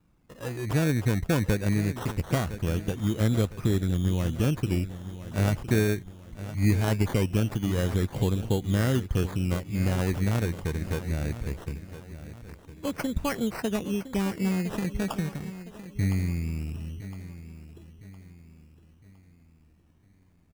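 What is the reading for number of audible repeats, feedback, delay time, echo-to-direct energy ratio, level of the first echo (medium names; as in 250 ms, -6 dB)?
3, 41%, 1011 ms, -12.5 dB, -13.5 dB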